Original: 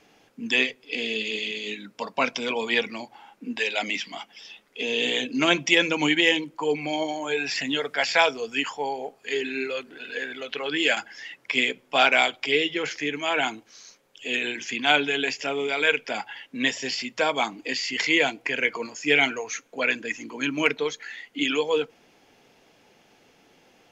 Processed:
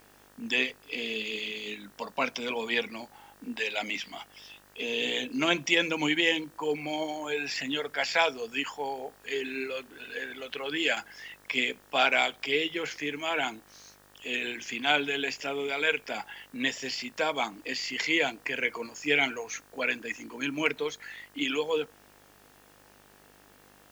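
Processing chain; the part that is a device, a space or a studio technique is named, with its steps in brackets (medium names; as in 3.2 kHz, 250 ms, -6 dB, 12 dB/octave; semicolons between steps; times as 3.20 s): video cassette with head-switching buzz (mains buzz 50 Hz, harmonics 38, -56 dBFS -1 dB/octave; white noise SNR 31 dB); trim -5 dB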